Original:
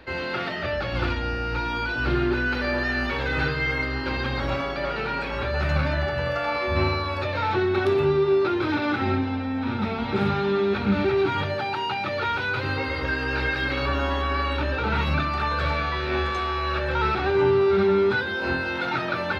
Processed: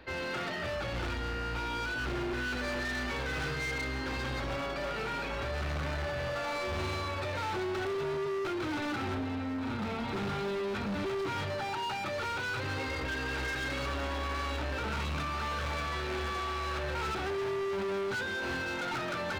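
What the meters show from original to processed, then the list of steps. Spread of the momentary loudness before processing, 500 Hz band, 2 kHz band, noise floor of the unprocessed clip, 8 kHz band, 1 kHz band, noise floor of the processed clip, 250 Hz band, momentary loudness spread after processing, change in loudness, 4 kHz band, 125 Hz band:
6 LU, -11.0 dB, -8.5 dB, -29 dBFS, no reading, -9.0 dB, -36 dBFS, -10.5 dB, 2 LU, -9.5 dB, -6.5 dB, -10.0 dB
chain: overload inside the chain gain 27 dB; trim -5 dB

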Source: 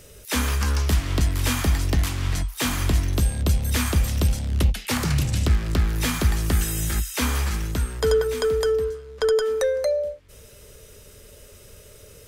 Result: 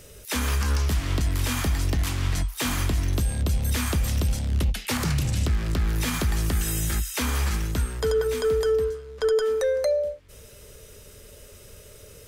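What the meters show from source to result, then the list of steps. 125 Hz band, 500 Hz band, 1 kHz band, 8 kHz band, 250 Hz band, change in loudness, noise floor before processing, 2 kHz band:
-2.5 dB, -1.5 dB, -2.0 dB, -2.0 dB, -2.5 dB, -2.0 dB, -48 dBFS, -2.0 dB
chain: peak limiter -16 dBFS, peak gain reduction 6.5 dB

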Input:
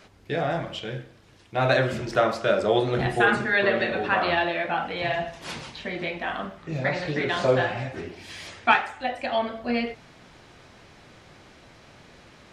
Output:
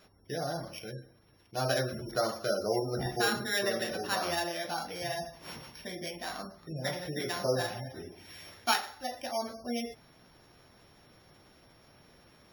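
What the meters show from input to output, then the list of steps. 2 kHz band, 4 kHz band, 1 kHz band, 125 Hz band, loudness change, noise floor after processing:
-11.5 dB, -3.0 dB, -9.5 dB, -8.5 dB, -8.5 dB, -62 dBFS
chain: sorted samples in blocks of 8 samples; spectral gate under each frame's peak -25 dB strong; trim -8.5 dB

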